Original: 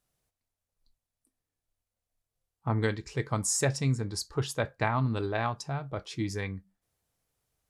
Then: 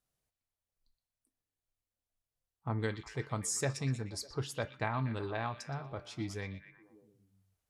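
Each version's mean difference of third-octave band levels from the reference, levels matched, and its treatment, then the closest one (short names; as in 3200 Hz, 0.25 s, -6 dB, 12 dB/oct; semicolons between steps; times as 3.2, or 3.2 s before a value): 3.0 dB: de-hum 295.8 Hz, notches 19; on a send: delay with a stepping band-pass 0.12 s, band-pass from 3300 Hz, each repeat -0.7 oct, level -8 dB; on the sum: gain -6.5 dB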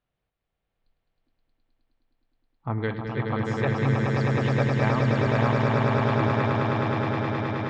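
11.5 dB: LPF 3400 Hz 24 dB/oct; on a send: swelling echo 0.105 s, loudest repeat 8, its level -4 dB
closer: first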